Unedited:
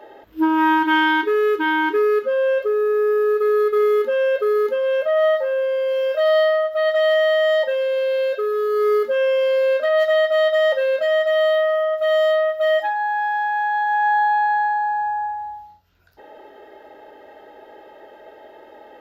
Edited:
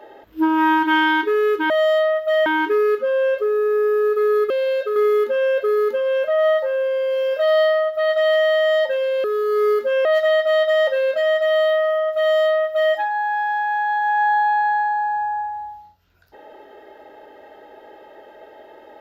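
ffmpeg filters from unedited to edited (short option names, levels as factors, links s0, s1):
-filter_complex "[0:a]asplit=7[s0][s1][s2][s3][s4][s5][s6];[s0]atrim=end=1.702[s7];[s1]atrim=start=12.028:end=12.792[s8];[s2]atrim=start=1.698:end=3.742[s9];[s3]atrim=start=8.018:end=8.482[s10];[s4]atrim=start=3.738:end=8.022[s11];[s5]atrim=start=8.478:end=9.292[s12];[s6]atrim=start=9.898[s13];[s7][s8]acrossfade=d=0.004:c1=hsin:c2=hsin[s14];[s14][s9]acrossfade=d=0.004:c1=hsin:c2=hsin[s15];[s15][s10]acrossfade=d=0.004:c1=hsin:c2=hsin[s16];[s16][s11]acrossfade=d=0.004:c1=hsin:c2=hsin[s17];[s17][s12]acrossfade=d=0.004:c1=hsin:c2=hsin[s18];[s18][s13]acrossfade=d=0.004:c1=hsin:c2=hsin"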